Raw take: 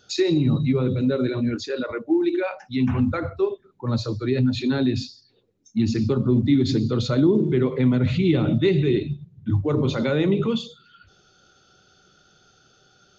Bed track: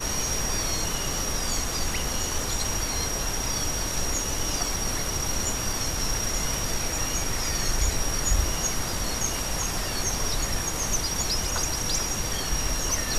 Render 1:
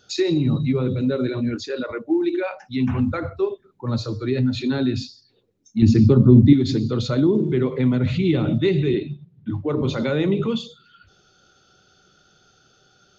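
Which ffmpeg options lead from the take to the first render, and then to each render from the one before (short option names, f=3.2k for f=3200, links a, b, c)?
-filter_complex "[0:a]asettb=1/sr,asplit=3[a][b][c];[a]atrim=end=3.904[d];[b]atrim=start=3.9:end=4.97,asetpts=PTS-STARTPTS,afade=t=in:d=0.004:c=qsin,afade=t=out:st=1.066:d=0.004:c=qsin,bandreject=f=153.3:t=h:w=4,bandreject=f=306.6:t=h:w=4,bandreject=f=459.9:t=h:w=4,bandreject=f=613.2:t=h:w=4,bandreject=f=766.5:t=h:w=4,bandreject=f=919.8:t=h:w=4,bandreject=f=1.0731k:t=h:w=4,bandreject=f=1.2264k:t=h:w=4,bandreject=f=1.3797k:t=h:w=4,bandreject=f=1.533k:t=h:w=4,bandreject=f=1.6863k:t=h:w=4,bandreject=f=1.8396k:t=h:w=4,bandreject=f=1.9929k:t=h:w=4[e];[c]atrim=start=4.966[f];[d][e]acrossfade=d=0.004:c1=hsin:c2=qsin[g];[g][f]acrossfade=d=0.004:c1=qsin:c2=hsin,asettb=1/sr,asplit=3[h][i][j];[h]atrim=end=5.824[k];[i]atrim=start=5.82:end=6.53,asetpts=PTS-STARTPTS,afade=t=in:d=0.004:c=qsin,afade=t=out:st=0.706:d=0.004:c=qsin,lowshelf=f=420:g=10.5[l];[j]atrim=start=6.526[m];[k][l]acrossfade=d=0.004:c1=hsin:c2=qsin[n];[n][m]acrossfade=d=0.004:c1=qsin:c2=hsin,asettb=1/sr,asplit=3[o][p][q];[o]atrim=end=8.944[r];[p]atrim=start=8.94:end=9.82,asetpts=PTS-STARTPTS,afade=t=in:d=0.004:c=qsin,afade=t=out:st=0.876:d=0.004:c=qsin,highpass=150,lowpass=4.4k[s];[q]atrim=start=9.816[t];[r][s]acrossfade=d=0.004:c1=hsin:c2=qsin[u];[u][t]acrossfade=d=0.004:c1=qsin:c2=hsin"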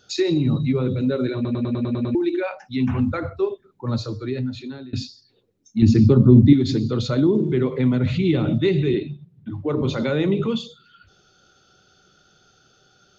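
-filter_complex "[0:a]asettb=1/sr,asplit=3[a][b][c];[a]atrim=end=9.034[d];[b]atrim=start=9.03:end=9.63,asetpts=PTS-STARTPTS,afade=t=in:d=0.004:c=qsin,afade=t=out:st=0.596:d=0.004:c=qsin,acompressor=threshold=-27dB:ratio=4:attack=3.2:release=140:knee=1:detection=peak[e];[c]atrim=start=9.626[f];[d][e]acrossfade=d=0.004:c1=hsin:c2=qsin[g];[g][f]acrossfade=d=0.004:c1=qsin:c2=hsin,asplit=10[h][i][j][k][l][m][n][o][p][q];[h]atrim=end=1.452[r];[i]atrim=start=1.348:end=1.452[s];[j]atrim=start=1.348:end=1.452[t];[k]atrim=start=1.348:end=1.452[u];[l]atrim=start=1.348:end=1.452[v];[m]atrim=start=1.348:end=1.452[w];[n]atrim=start=1.348:end=1.452[x];[o]atrim=start=1.348:end=1.452[y];[p]atrim=start=2.148:end=4.93,asetpts=PTS-STARTPTS,afade=t=out:st=1.762:d=1.02:silence=0.0668344[z];[q]atrim=start=4.93,asetpts=PTS-STARTPTS,afade=t=in:d=0.004:c=hsin:silence=0.0668344[aa];[r][s]acrossfade=d=0.004:c1=hsin:c2=hsin[ab];[ab][t]acrossfade=d=0.004:c1=hsin:c2=hsin[ac];[ac][u]acrossfade=d=0.004:c1=hsin:c2=hsin[ad];[ad][v]acrossfade=d=0.004:c1=hsin:c2=hsin[ae];[ae][w]acrossfade=d=0.004:c1=hsin:c2=hsin[af];[af][x]acrossfade=d=0.004:c1=hsin:c2=hsin[ag];[ag][y]acrossfade=d=0.004:c1=hsin:c2=hsin[ah];[z][aa]concat=n=2:v=0:a=1[ai];[ah][ai]acrossfade=d=0.004:c1=hsin:c2=hsin"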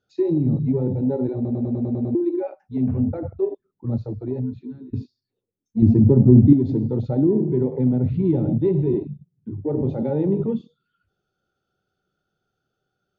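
-af "afwtdn=0.0631,lowpass=f=1.2k:p=1"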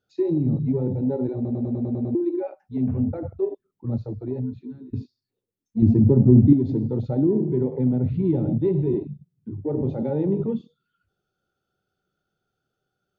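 -af "volume=-2dB"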